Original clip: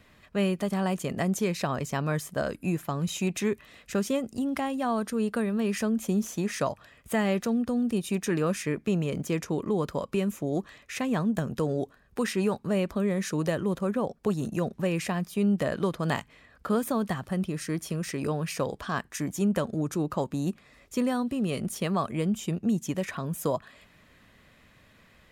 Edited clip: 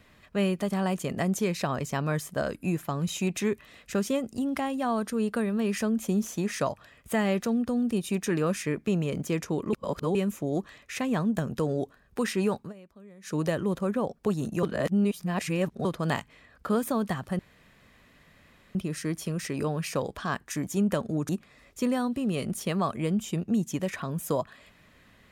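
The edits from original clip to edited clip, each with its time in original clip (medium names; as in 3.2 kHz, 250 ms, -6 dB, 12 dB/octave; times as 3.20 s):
9.73–10.15 s: reverse
12.60–13.35 s: dip -23 dB, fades 0.13 s
14.63–15.85 s: reverse
17.39 s: insert room tone 1.36 s
19.93–20.44 s: delete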